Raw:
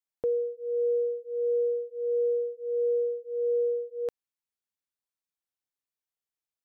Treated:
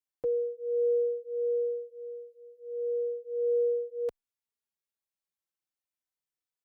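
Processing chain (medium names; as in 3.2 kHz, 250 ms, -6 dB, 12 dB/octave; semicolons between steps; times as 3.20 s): endless flanger 3.4 ms -0.34 Hz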